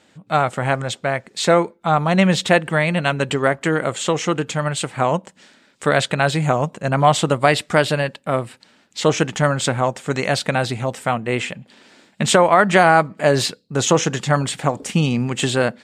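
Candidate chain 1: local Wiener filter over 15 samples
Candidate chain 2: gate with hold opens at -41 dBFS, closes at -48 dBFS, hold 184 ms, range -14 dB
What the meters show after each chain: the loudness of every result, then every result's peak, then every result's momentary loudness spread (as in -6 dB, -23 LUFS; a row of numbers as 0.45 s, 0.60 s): -19.5 LUFS, -19.0 LUFS; -1.5 dBFS, -1.5 dBFS; 9 LU, 8 LU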